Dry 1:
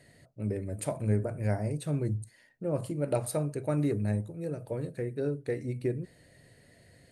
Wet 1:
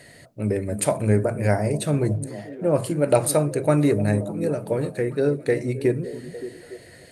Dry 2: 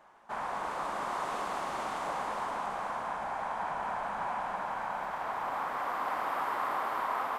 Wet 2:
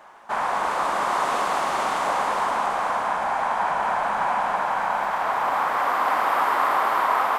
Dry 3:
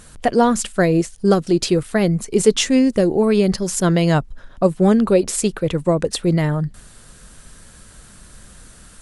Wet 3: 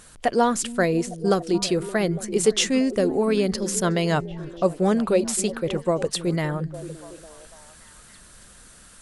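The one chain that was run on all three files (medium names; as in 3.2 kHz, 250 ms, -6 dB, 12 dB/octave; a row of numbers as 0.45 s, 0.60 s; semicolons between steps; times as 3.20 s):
bass shelf 310 Hz -7.5 dB; on a send: repeats whose band climbs or falls 285 ms, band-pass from 200 Hz, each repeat 0.7 oct, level -9 dB; on the sum: normalise loudness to -23 LUFS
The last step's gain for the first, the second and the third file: +13.5 dB, +12.5 dB, -2.5 dB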